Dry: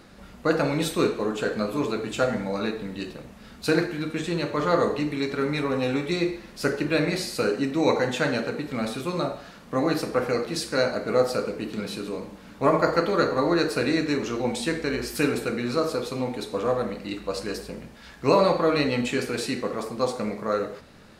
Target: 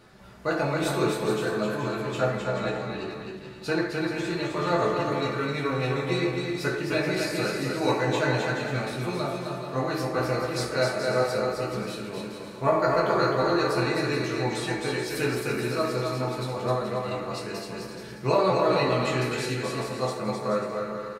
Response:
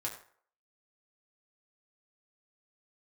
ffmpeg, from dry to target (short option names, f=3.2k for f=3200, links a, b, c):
-filter_complex "[0:a]asettb=1/sr,asplit=3[a][b][c];[a]atrim=end=1.754[d];[b]atrim=start=1.75:end=3.9,asetpts=PTS-STARTPTS,afade=t=in:d=0.004:c=qsin,afade=t=out:st=2.146:d=0.004:c=qsin,highshelf=f=8.2k:g=-9[e];[c]atrim=start=3.896[f];[d][e]acrossfade=d=0.004:c1=hsin:c2=qsin[g];[g][f]acrossfade=d=0.004:c1=qsin:c2=hsin,aecho=1:1:260|429|538.8|610.3|656.7:0.631|0.398|0.251|0.158|0.1[h];[1:a]atrim=start_sample=2205,asetrate=52920,aresample=44100[i];[h][i]afir=irnorm=-1:irlink=0,volume=-2dB"